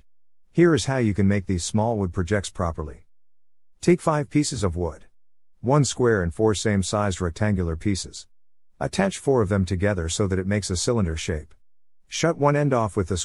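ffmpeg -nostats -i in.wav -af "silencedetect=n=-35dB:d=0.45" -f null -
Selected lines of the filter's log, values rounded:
silence_start: 0.00
silence_end: 0.57 | silence_duration: 0.57
silence_start: 2.93
silence_end: 3.83 | silence_duration: 0.90
silence_start: 4.95
silence_end: 5.64 | silence_duration: 0.68
silence_start: 8.21
silence_end: 8.81 | silence_duration: 0.60
silence_start: 11.43
silence_end: 12.12 | silence_duration: 0.69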